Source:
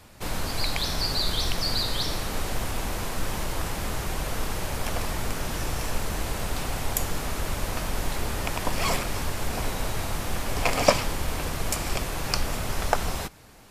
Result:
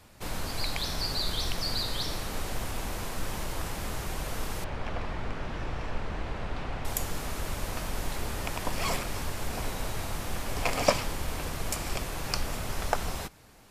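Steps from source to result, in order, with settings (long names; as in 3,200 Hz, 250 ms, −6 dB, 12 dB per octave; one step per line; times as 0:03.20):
0:04.64–0:06.85: low-pass filter 2,800 Hz 12 dB per octave
level −4.5 dB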